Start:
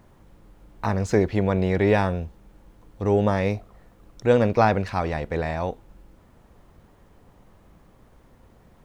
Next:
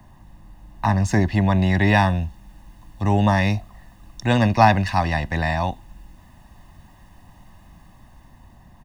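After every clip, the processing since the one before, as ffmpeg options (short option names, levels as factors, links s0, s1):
-filter_complex "[0:a]aecho=1:1:1.1:0.88,acrossover=split=130|360|1700[s0][s1][s2][s3];[s3]dynaudnorm=f=570:g=5:m=1.78[s4];[s0][s1][s2][s4]amix=inputs=4:normalize=0,volume=1.19"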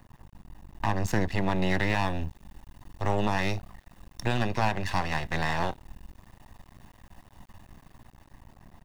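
-af "alimiter=limit=0.251:level=0:latency=1:release=261,aeval=exprs='max(val(0),0)':c=same"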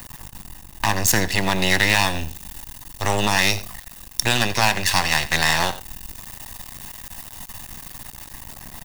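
-af "crystalizer=i=9:c=0,aecho=1:1:88:0.141,areverse,acompressor=mode=upward:threshold=0.0282:ratio=2.5,areverse,volume=1.41"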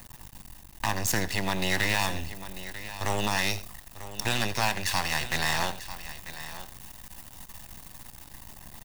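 -filter_complex "[0:a]acrossover=split=1400[s0][s1];[s1]asoftclip=type=tanh:threshold=0.251[s2];[s0][s2]amix=inputs=2:normalize=0,acrusher=bits=5:dc=4:mix=0:aa=0.000001,aecho=1:1:943:0.211,volume=0.422"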